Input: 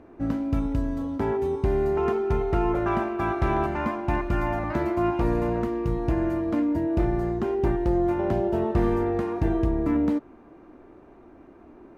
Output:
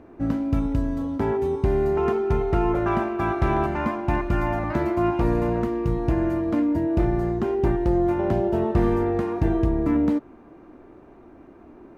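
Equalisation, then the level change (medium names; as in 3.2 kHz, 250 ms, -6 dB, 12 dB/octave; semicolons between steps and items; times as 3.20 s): peaking EQ 140 Hz +2 dB 1.6 oct; +1.5 dB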